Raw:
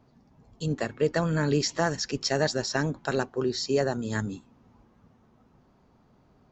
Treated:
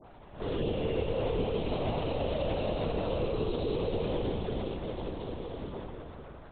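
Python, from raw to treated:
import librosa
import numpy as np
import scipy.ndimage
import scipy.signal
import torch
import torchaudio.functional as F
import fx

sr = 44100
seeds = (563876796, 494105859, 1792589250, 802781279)

y = fx.spec_blur(x, sr, span_ms=293.0)
y = scipy.signal.sosfilt(scipy.signal.butter(2, 370.0, 'highpass', fs=sr, output='sos'), y)
y = fx.leveller(y, sr, passes=3)
y = fx.dispersion(y, sr, late='highs', ms=56.0, hz=1200.0)
y = fx.env_flanger(y, sr, rest_ms=9.8, full_db=-32.0)
y = y + 10.0 ** (-6.5 / 20.0) * np.pad(y, (int(314 * sr / 1000.0), 0))[:len(y)]
y = fx.rev_fdn(y, sr, rt60_s=2.6, lf_ratio=1.0, hf_ratio=0.9, size_ms=94.0, drr_db=4.0)
y = fx.lpc_vocoder(y, sr, seeds[0], excitation='whisper', order=10)
y = fx.band_squash(y, sr, depth_pct=100)
y = F.gain(torch.from_numpy(y), -4.5).numpy()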